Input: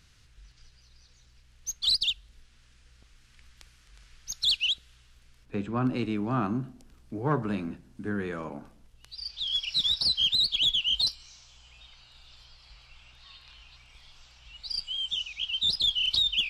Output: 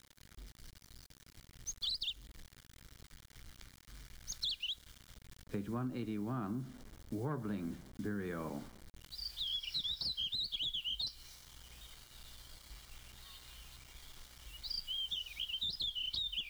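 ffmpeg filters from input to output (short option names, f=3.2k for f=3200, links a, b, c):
-af "aemphasis=mode=reproduction:type=50kf,acrusher=bits=8:mix=0:aa=0.000001,equalizer=f=830:t=o:w=2.2:g=-4,acompressor=threshold=-36dB:ratio=6,bandreject=f=2.6k:w=6.6"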